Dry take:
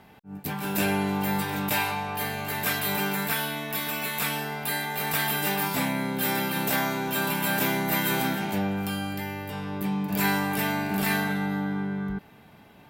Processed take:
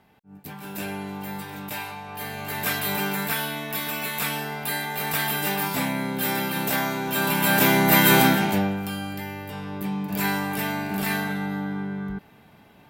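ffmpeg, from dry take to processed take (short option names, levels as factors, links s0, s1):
-af "volume=3.16,afade=t=in:st=2.03:d=0.63:silence=0.398107,afade=t=in:st=7.05:d=1.12:silence=0.354813,afade=t=out:st=8.17:d=0.63:silence=0.298538"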